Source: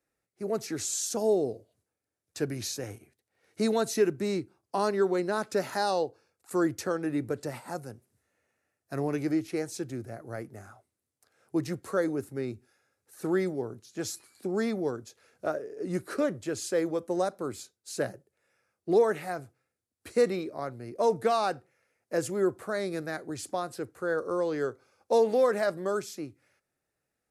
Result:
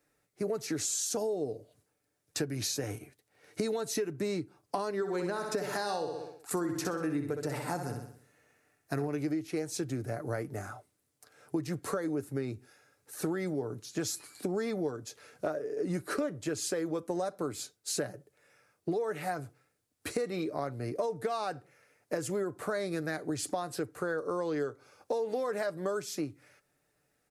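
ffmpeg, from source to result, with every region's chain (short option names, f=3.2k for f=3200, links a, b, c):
-filter_complex "[0:a]asettb=1/sr,asplit=3[a][b][c];[a]atrim=end=4.964[d];[b]atrim=start=4.96:end=9.08,asetpts=PTS-STARTPTS,afade=t=in:d=0.004:c=qsin,afade=t=out:st=4.116:d=0.004:c=qsin,bandreject=f=570:w=14,aecho=1:1:63|126|189|252|315|378:0.422|0.207|0.101|0.0496|0.0243|0.0119,atrim=end_sample=181692[e];[c]atrim=start=9.076[f];[d][e]acrossfade=d=0.004:c1=hsin:c2=qsin[g];[g][f]acrossfade=d=0.004:c1=qsin:c2=hsin,alimiter=limit=-20dB:level=0:latency=1:release=202,aecho=1:1:6.8:0.35,acompressor=threshold=-38dB:ratio=6,volume=7.5dB"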